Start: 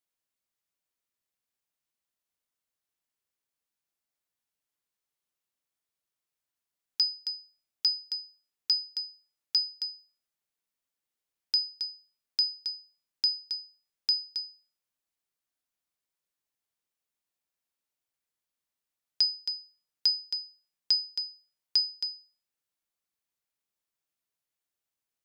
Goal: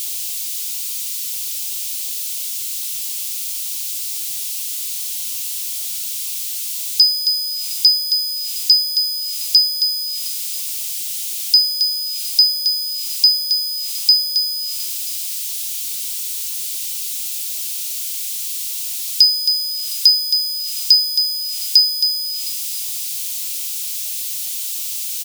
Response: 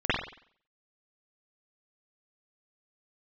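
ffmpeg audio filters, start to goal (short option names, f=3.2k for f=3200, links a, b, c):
-af "aeval=exprs='val(0)+0.5*0.0266*sgn(val(0))':c=same,equalizer=f=280:t=o:w=1.1:g=5,aecho=1:1:712:0.106,aexciter=amount=12.3:drive=4.7:freq=2.4k,volume=-10dB"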